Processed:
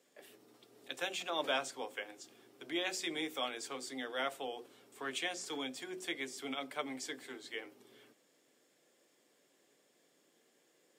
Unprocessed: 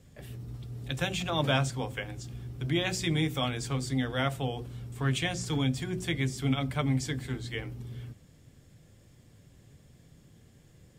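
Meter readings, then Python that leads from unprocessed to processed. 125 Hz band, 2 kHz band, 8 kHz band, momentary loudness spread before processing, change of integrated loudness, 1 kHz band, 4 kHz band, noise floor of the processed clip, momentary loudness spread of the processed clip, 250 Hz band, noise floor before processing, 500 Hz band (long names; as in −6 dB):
−35.0 dB, −5.5 dB, −5.5 dB, 13 LU, −8.0 dB, −5.5 dB, −5.5 dB, −73 dBFS, 17 LU, −13.0 dB, −59 dBFS, −6.0 dB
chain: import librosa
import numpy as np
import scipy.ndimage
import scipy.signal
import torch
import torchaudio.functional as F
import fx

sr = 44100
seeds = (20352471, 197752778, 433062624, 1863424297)

y = scipy.signal.sosfilt(scipy.signal.butter(4, 330.0, 'highpass', fs=sr, output='sos'), x)
y = y * 10.0 ** (-5.5 / 20.0)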